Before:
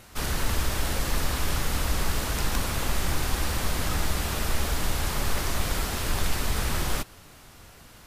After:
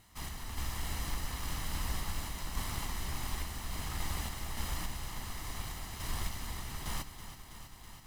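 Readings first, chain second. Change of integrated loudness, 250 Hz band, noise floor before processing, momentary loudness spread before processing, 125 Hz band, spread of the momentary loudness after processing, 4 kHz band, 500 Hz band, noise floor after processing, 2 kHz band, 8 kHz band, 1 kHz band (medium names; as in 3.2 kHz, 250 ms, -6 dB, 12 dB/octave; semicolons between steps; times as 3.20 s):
-11.0 dB, -12.0 dB, -50 dBFS, 1 LU, -10.5 dB, 6 LU, -10.5 dB, -16.5 dB, -52 dBFS, -12.0 dB, -10.5 dB, -10.5 dB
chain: comb filter that takes the minimum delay 1 ms; random-step tremolo; bit-crushed delay 325 ms, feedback 80%, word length 9-bit, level -11.5 dB; trim -7.5 dB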